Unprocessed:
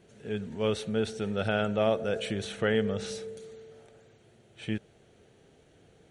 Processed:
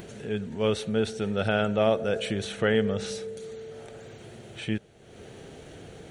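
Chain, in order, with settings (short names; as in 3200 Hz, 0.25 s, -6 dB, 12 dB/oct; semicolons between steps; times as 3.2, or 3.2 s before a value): upward compressor, threshold -36 dBFS; gain +3 dB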